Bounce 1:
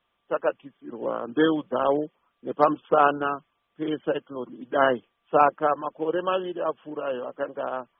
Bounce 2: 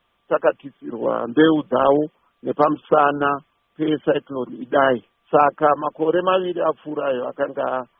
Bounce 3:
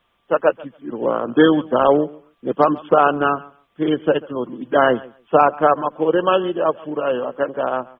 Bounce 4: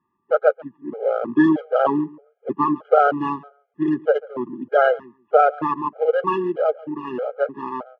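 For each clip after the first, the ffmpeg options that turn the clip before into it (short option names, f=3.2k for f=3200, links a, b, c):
-af "lowshelf=f=150:g=4.5,alimiter=limit=-10dB:level=0:latency=1:release=179,volume=7dB"
-af "aecho=1:1:140|280:0.0841|0.0135,volume=1.5dB"
-af "adynamicsmooth=sensitivity=5.5:basefreq=1.2k,highpass=150,lowpass=2.1k,afftfilt=real='re*gt(sin(2*PI*1.6*pts/sr)*(1-2*mod(floor(b*sr/1024/410),2)),0)':imag='im*gt(sin(2*PI*1.6*pts/sr)*(1-2*mod(floor(b*sr/1024/410),2)),0)':win_size=1024:overlap=0.75"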